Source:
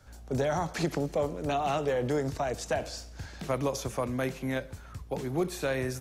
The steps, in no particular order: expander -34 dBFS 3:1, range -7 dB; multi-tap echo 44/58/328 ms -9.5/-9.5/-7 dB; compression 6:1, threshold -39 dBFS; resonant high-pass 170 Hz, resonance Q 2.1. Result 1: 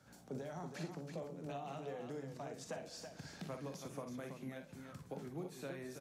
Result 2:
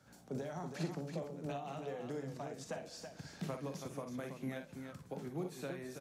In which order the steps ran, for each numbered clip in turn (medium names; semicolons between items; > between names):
resonant high-pass > compression > expander > multi-tap echo; compression > resonant high-pass > expander > multi-tap echo